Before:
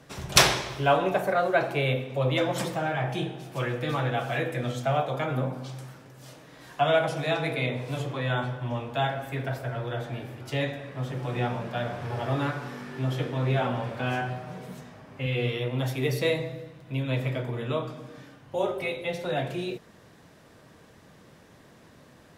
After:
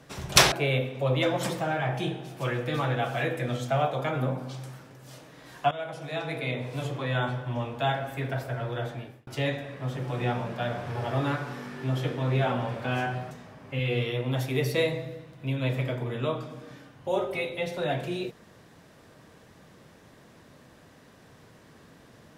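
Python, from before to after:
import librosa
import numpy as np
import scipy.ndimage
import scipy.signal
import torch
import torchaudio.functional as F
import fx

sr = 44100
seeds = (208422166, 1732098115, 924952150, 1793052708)

y = fx.edit(x, sr, fx.cut(start_s=0.52, length_s=1.15),
    fx.fade_in_from(start_s=6.86, length_s=1.61, curve='qsin', floor_db=-17.0),
    fx.fade_out_span(start_s=10.01, length_s=0.41),
    fx.cut(start_s=14.46, length_s=0.32), tone=tone)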